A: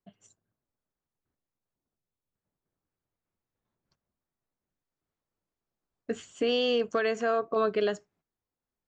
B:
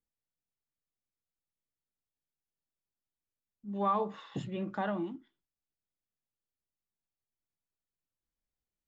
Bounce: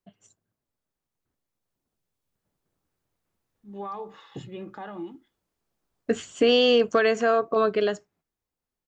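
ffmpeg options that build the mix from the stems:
-filter_complex "[0:a]volume=1.5dB[a];[1:a]aecho=1:1:2.4:0.41,alimiter=level_in=3.5dB:limit=-24dB:level=0:latency=1:release=132,volume=-3.5dB,volume=-6.5dB[b];[a][b]amix=inputs=2:normalize=0,dynaudnorm=f=280:g=13:m=6.5dB"

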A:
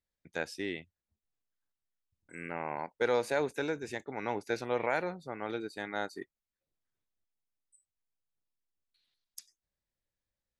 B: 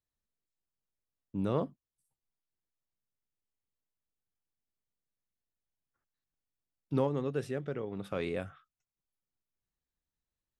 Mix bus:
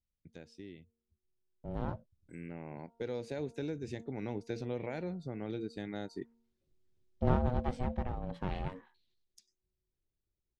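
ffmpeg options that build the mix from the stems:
-filter_complex "[0:a]equalizer=f=1.2k:t=o:w=2:g=-14.5,bandreject=f=231.3:t=h:w=4,bandreject=f=462.6:t=h:w=4,bandreject=f=693.9:t=h:w=4,bandreject=f=925.2:t=h:w=4,bandreject=f=1.1565k:t=h:w=4,bandreject=f=1.3878k:t=h:w=4,acompressor=threshold=-52dB:ratio=2,volume=-4.5dB[a];[1:a]aeval=exprs='clip(val(0),-1,0.01)':c=same,aeval=exprs='val(0)*sin(2*PI*370*n/s)':c=same,adelay=300,volume=-10dB[b];[a][b]amix=inputs=2:normalize=0,lowpass=5.3k,lowshelf=f=280:g=10.5,dynaudnorm=f=250:g=21:m=11dB"

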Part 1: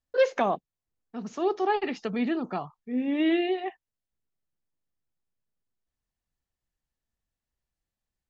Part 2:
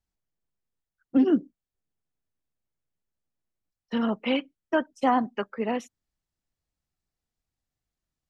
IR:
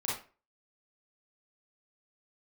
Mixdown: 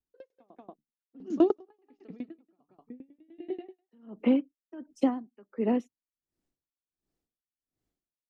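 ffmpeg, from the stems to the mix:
-filter_complex "[0:a]bandreject=f=73.18:t=h:w=4,bandreject=f=146.36:t=h:w=4,bandreject=f=219.54:t=h:w=4,bandreject=f=292.72:t=h:w=4,aeval=exprs='val(0)*pow(10,-27*if(lt(mod(10*n/s,1),2*abs(10)/1000),1-mod(10*n/s,1)/(2*abs(10)/1000),(mod(10*n/s,1)-2*abs(10)/1000)/(1-2*abs(10)/1000))/20)':c=same,volume=3dB,asplit=2[a][b];[b]volume=-24dB[c];[1:a]acrossover=split=210|1900[d][e][f];[d]acompressor=threshold=-34dB:ratio=4[g];[e]acompressor=threshold=-33dB:ratio=4[h];[f]acompressor=threshold=-48dB:ratio=4[i];[g][h][i]amix=inputs=3:normalize=0,adynamicequalizer=threshold=0.00447:dfrequency=1600:dqfactor=0.7:tfrequency=1600:tqfactor=0.7:attack=5:release=100:ratio=0.375:range=2:mode=cutabove:tftype=highshelf,volume=-1dB,afade=t=in:st=4.04:d=0.23:silence=0.298538,asplit=2[j][k];[k]apad=whole_len=365807[l];[a][l]sidechaingate=range=-16dB:threshold=-56dB:ratio=16:detection=peak[m];[c]aecho=0:1:184:1[n];[m][j][n]amix=inputs=3:normalize=0,equalizer=f=320:w=0.89:g=14,aeval=exprs='val(0)*pow(10,-29*(0.5-0.5*cos(2*PI*1.4*n/s))/20)':c=same"

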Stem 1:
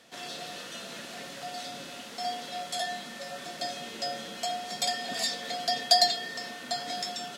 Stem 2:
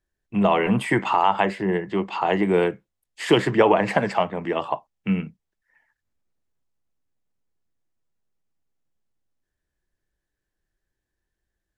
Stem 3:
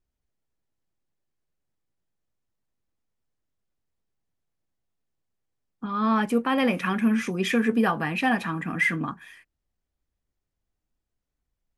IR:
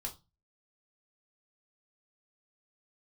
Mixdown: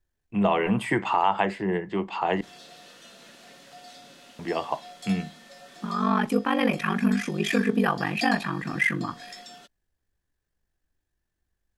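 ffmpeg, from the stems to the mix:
-filter_complex "[0:a]adelay=2300,volume=-8.5dB[a];[1:a]volume=-4.5dB,asplit=3[b][c][d];[b]atrim=end=2.41,asetpts=PTS-STARTPTS,afade=t=out:st=2.406:d=0.004:c=hsin[e];[c]atrim=start=2.41:end=4.39,asetpts=PTS-STARTPTS,volume=0[f];[d]atrim=start=4.39,asetpts=PTS-STARTPTS,afade=t=in:d=0.004:c=hsin[g];[e][f][g]concat=n=3:v=0:a=1,asplit=2[h][i];[i]volume=-12.5dB[j];[2:a]aeval=exprs='val(0)*sin(2*PI*24*n/s)':c=same,volume=1.5dB,asplit=3[k][l][m];[l]volume=-14dB[n];[m]apad=whole_len=426670[o];[a][o]sidechaincompress=threshold=-26dB:ratio=8:attack=16:release=749[p];[3:a]atrim=start_sample=2205[q];[j][n]amix=inputs=2:normalize=0[r];[r][q]afir=irnorm=-1:irlink=0[s];[p][h][k][s]amix=inputs=4:normalize=0"

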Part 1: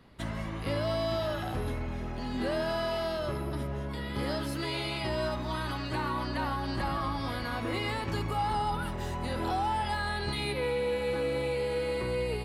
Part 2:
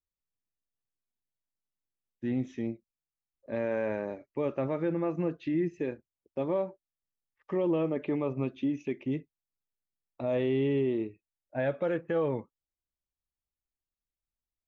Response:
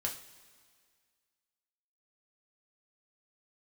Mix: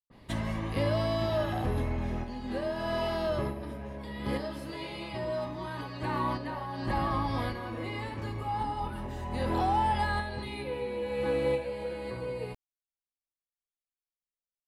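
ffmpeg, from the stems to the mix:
-filter_complex "[0:a]bandreject=f=1.4k:w=6,adynamicequalizer=threshold=0.00355:dfrequency=2400:dqfactor=0.7:tfrequency=2400:tqfactor=0.7:attack=5:release=100:ratio=0.375:range=3:mode=cutabove:tftype=highshelf,adelay=100,volume=0.5dB,asplit=2[a][b];[b]volume=-9.5dB[c];[1:a]volume=-18dB,asplit=2[d][e];[e]apad=whole_len=553265[f];[a][f]sidechaincompress=threshold=-57dB:ratio=8:attack=6.1:release=313[g];[2:a]atrim=start_sample=2205[h];[c][h]afir=irnorm=-1:irlink=0[i];[g][d][i]amix=inputs=3:normalize=0"

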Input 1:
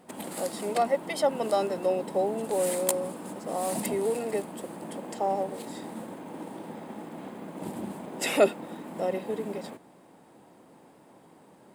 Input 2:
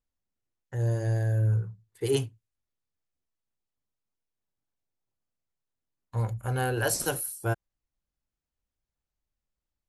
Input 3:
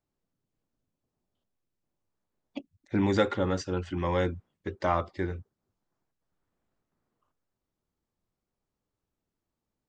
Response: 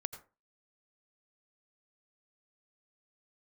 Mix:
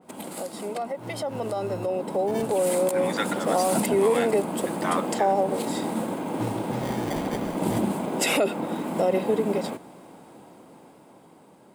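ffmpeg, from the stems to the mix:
-filter_complex "[0:a]bandreject=f=1.8k:w=10,adynamicequalizer=threshold=0.00631:dfrequency=2300:dqfactor=0.7:tfrequency=2300:tqfactor=0.7:attack=5:release=100:ratio=0.375:range=2.5:mode=cutabove:tftype=highshelf,volume=1dB[a];[1:a]acrusher=samples=33:mix=1:aa=0.000001,adelay=250,volume=-15.5dB[b];[2:a]highpass=970,volume=-6dB[c];[a][b]amix=inputs=2:normalize=0,alimiter=limit=-23dB:level=0:latency=1:release=116,volume=0dB[d];[c][d]amix=inputs=2:normalize=0,dynaudnorm=f=530:g=9:m=10dB"

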